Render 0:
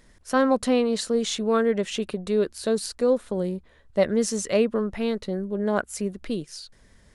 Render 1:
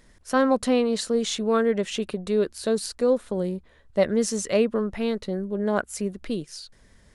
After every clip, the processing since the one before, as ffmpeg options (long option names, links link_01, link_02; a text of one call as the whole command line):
ffmpeg -i in.wav -af anull out.wav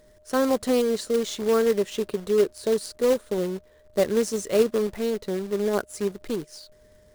ffmpeg -i in.wav -af "acrusher=bits=2:mode=log:mix=0:aa=0.000001,equalizer=frequency=100:width_type=o:width=0.67:gain=4,equalizer=frequency=400:width_type=o:width=0.67:gain=8,equalizer=frequency=2500:width_type=o:width=0.67:gain=-3,aeval=exprs='val(0)+0.00282*sin(2*PI*610*n/s)':channel_layout=same,volume=-4.5dB" out.wav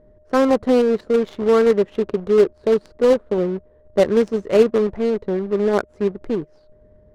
ffmpeg -i in.wav -af "adynamicsmooth=sensitivity=2.5:basefreq=730,volume=6.5dB" out.wav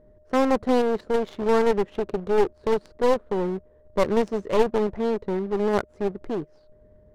ffmpeg -i in.wav -af "aeval=exprs='clip(val(0),-1,0.075)':channel_layout=same,volume=-3dB" out.wav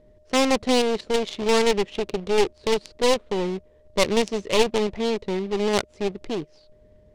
ffmpeg -i in.wav -filter_complex "[0:a]acrossover=split=1800[link_01][link_02];[link_02]adynamicsmooth=sensitivity=6.5:basefreq=6300[link_03];[link_01][link_03]amix=inputs=2:normalize=0,aexciter=amount=5.7:drive=4.5:freq=2200" out.wav